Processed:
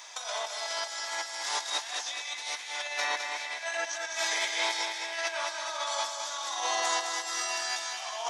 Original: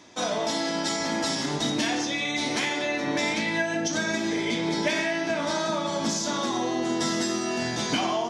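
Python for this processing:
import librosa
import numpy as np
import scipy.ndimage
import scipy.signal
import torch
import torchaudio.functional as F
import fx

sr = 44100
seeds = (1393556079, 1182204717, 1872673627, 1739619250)

y = scipy.signal.sosfilt(scipy.signal.butter(4, 750.0, 'highpass', fs=sr, output='sos'), x)
y = fx.high_shelf(y, sr, hz=7100.0, db=10.0)
y = fx.over_compress(y, sr, threshold_db=-34.0, ratio=-0.5)
y = fx.echo_feedback(y, sr, ms=211, feedback_pct=55, wet_db=-6.0)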